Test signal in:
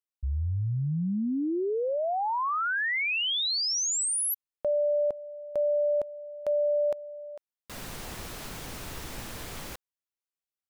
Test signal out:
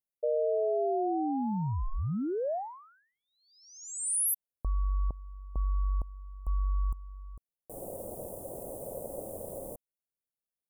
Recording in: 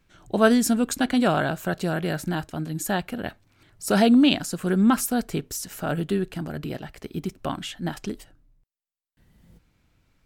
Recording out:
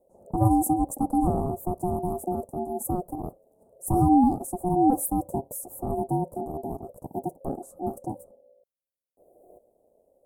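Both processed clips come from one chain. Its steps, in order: ring modulator 540 Hz; Chebyshev band-stop 680–9400 Hz, order 3; gain +3.5 dB

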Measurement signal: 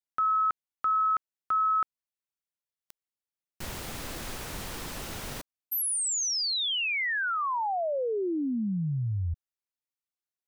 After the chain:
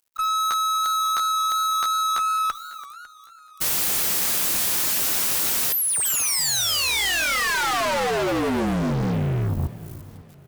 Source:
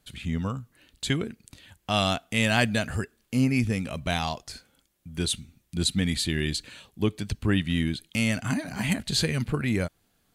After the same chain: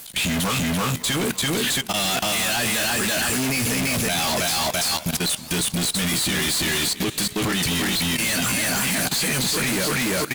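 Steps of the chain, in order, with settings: bell 160 Hz +6.5 dB 1.1 oct; harmonic-percussive split harmonic -6 dB; RIAA curve recording; feedback echo 0.336 s, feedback 21%, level -3 dB; in parallel at +3 dB: limiter -13 dBFS; on the sum: auto swell 0.324 s; upward compressor 1.5:1, threshold -32 dBFS; hard clip -14 dBFS; doubler 16 ms -8.5 dB; fuzz box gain 44 dB, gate -52 dBFS; level quantiser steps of 17 dB; warbling echo 0.553 s, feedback 42%, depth 197 cents, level -19 dB; gain -5.5 dB

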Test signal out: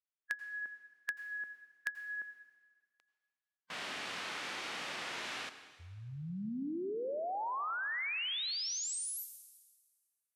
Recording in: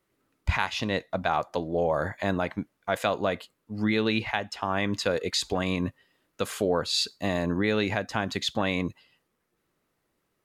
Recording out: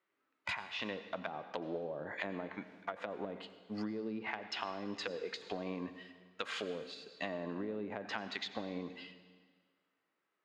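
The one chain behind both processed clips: low-pass opened by the level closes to 1700 Hz, open at -22.5 dBFS; HPF 240 Hz 12 dB/oct; treble ducked by the level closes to 370 Hz, closed at -23 dBFS; gate -60 dBFS, range -10 dB; tilt shelf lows -9.5 dB, about 1200 Hz; harmonic-percussive split percussive -8 dB; high shelf 10000 Hz +10.5 dB; compressor 6:1, threshold -46 dBFS; plate-style reverb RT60 1.6 s, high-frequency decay 0.95×, pre-delay 75 ms, DRR 11.5 dB; gain +9 dB

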